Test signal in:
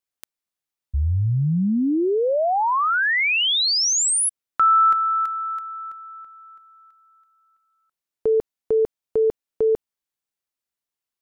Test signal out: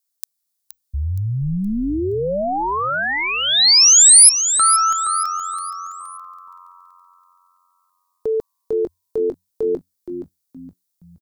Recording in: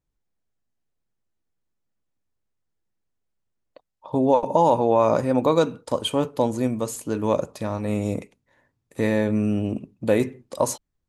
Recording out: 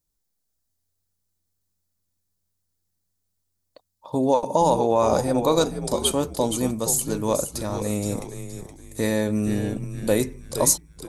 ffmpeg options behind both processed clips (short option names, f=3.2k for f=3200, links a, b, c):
-filter_complex "[0:a]asplit=5[a][b][c][d][e];[b]adelay=470,afreqshift=-90,volume=-9dB[f];[c]adelay=940,afreqshift=-180,volume=-17.9dB[g];[d]adelay=1410,afreqshift=-270,volume=-26.7dB[h];[e]adelay=1880,afreqshift=-360,volume=-35.6dB[i];[a][f][g][h][i]amix=inputs=5:normalize=0,aexciter=amount=5.3:drive=1.6:freq=3.9k,volume=-1.5dB"